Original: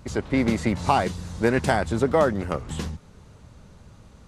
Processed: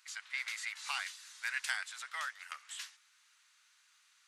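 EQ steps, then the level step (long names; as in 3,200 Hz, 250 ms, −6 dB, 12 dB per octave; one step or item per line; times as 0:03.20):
inverse Chebyshev high-pass filter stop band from 350 Hz, stop band 70 dB
−4.5 dB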